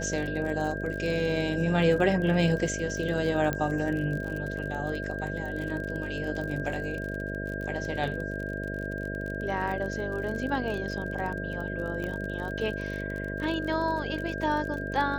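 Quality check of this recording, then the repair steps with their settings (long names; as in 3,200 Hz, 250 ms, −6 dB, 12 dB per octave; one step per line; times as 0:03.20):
mains buzz 50 Hz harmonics 13 −35 dBFS
surface crackle 38 per second −34 dBFS
whistle 1,600 Hz −36 dBFS
0:03.53: click −15 dBFS
0:12.04: click −23 dBFS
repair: click removal
notch filter 1,600 Hz, Q 30
hum removal 50 Hz, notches 13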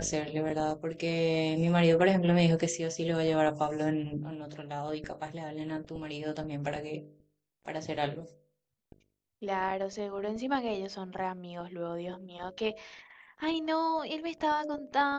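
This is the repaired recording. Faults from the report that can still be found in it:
0:12.04: click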